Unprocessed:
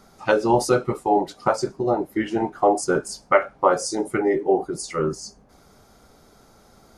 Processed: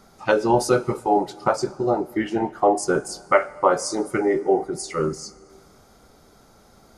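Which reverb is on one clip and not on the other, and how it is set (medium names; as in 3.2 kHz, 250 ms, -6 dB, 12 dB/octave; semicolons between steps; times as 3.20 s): plate-style reverb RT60 2.5 s, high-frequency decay 0.95×, DRR 19.5 dB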